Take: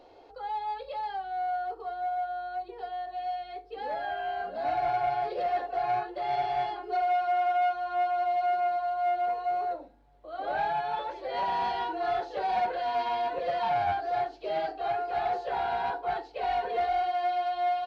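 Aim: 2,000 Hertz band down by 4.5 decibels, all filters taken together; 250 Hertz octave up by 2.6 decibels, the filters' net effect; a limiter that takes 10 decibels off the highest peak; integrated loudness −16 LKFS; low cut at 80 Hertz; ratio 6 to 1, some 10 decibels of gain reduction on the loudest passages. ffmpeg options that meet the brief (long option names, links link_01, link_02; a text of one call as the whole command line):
ffmpeg -i in.wav -af "highpass=80,equalizer=frequency=250:width_type=o:gain=4.5,equalizer=frequency=2000:width_type=o:gain=-6.5,acompressor=threshold=-36dB:ratio=6,volume=28dB,alimiter=limit=-10dB:level=0:latency=1" out.wav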